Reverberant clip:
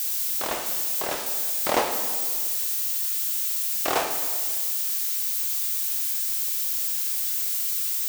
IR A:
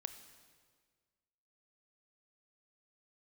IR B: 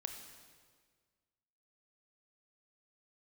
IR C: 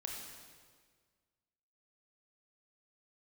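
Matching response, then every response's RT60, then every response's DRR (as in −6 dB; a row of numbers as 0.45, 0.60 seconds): B; 1.7, 1.7, 1.7 seconds; 9.5, 5.0, −0.5 decibels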